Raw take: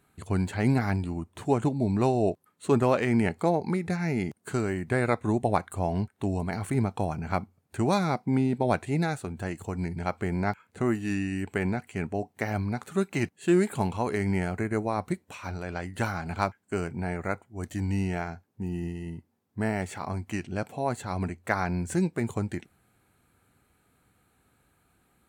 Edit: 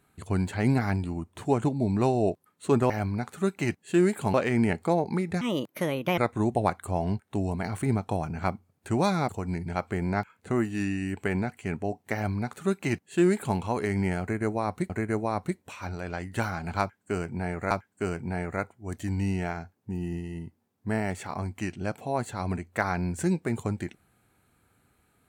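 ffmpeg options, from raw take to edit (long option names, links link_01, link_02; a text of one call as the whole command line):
ffmpeg -i in.wav -filter_complex "[0:a]asplit=8[link_01][link_02][link_03][link_04][link_05][link_06][link_07][link_08];[link_01]atrim=end=2.902[link_09];[link_02]atrim=start=12.438:end=13.882[link_10];[link_03]atrim=start=2.898:end=3.974[link_11];[link_04]atrim=start=3.97:end=5.06,asetpts=PTS-STARTPTS,asetrate=62622,aresample=44100,atrim=end_sample=33851,asetpts=PTS-STARTPTS[link_12];[link_05]atrim=start=5.056:end=8.172[link_13];[link_06]atrim=start=9.588:end=15.202[link_14];[link_07]atrim=start=14.518:end=17.332[link_15];[link_08]atrim=start=16.418[link_16];[link_09][link_10]acrossfade=duration=0.004:curve1=hsin:curve2=hsin[link_17];[link_17][link_11]acrossfade=duration=0.004:curve1=hsin:curve2=hsin[link_18];[link_18][link_12]acrossfade=duration=0.004:curve1=hsin:curve2=hsin[link_19];[link_19][link_13]acrossfade=duration=0.004:curve1=hsin:curve2=hsin[link_20];[link_20][link_14]acrossfade=duration=0.004:curve1=hsin:curve2=hsin[link_21];[link_21][link_15]acrossfade=duration=0.004:curve1=hsin:curve2=hsin[link_22];[link_22][link_16]acrossfade=duration=0.004:curve1=hsin:curve2=hsin" out.wav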